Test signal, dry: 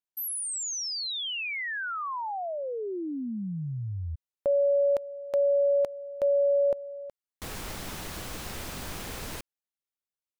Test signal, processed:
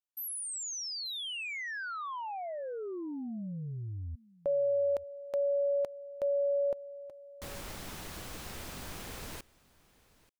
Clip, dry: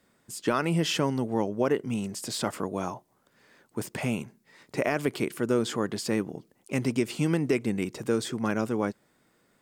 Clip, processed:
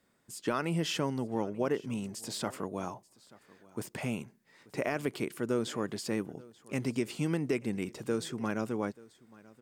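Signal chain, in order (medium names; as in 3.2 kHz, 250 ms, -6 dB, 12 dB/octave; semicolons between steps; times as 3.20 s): delay 884 ms -22.5 dB; trim -5.5 dB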